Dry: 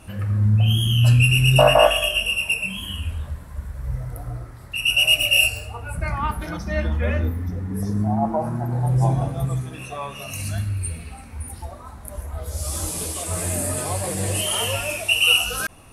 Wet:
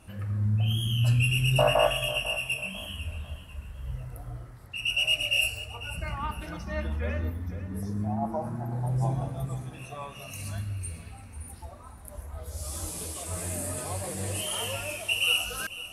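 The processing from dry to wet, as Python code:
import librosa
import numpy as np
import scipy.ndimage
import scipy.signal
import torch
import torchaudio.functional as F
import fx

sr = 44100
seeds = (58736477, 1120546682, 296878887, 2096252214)

p1 = fx.lowpass(x, sr, hz=8400.0, slope=12, at=(4.65, 5.42))
p2 = p1 + fx.echo_feedback(p1, sr, ms=497, feedback_pct=33, wet_db=-15, dry=0)
y = F.gain(torch.from_numpy(p2), -8.5).numpy()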